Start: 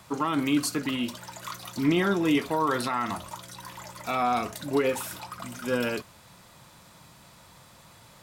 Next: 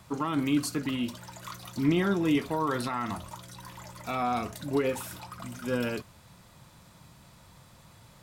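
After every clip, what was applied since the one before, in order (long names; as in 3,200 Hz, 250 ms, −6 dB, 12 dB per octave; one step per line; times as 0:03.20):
low-shelf EQ 200 Hz +9 dB
level −4.5 dB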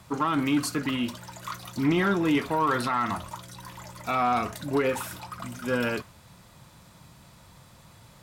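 dynamic equaliser 1,400 Hz, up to +6 dB, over −45 dBFS, Q 0.71
harmonic generator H 5 −25 dB, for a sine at −13 dBFS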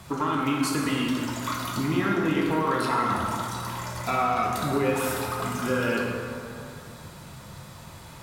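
downward compressor, threshold −31 dBFS, peak gain reduction 11.5 dB
dense smooth reverb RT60 2.6 s, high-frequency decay 0.55×, DRR −2 dB
level +5 dB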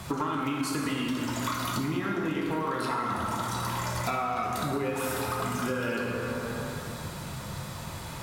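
downward compressor 6 to 1, threshold −33 dBFS, peak gain reduction 13 dB
level +5.5 dB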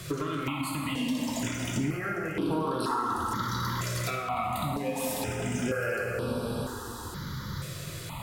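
step-sequenced phaser 2.1 Hz 230–6,800 Hz
level +2.5 dB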